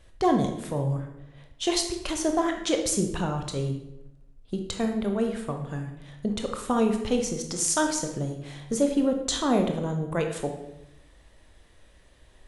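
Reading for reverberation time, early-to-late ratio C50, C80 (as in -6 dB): 0.90 s, 6.0 dB, 9.5 dB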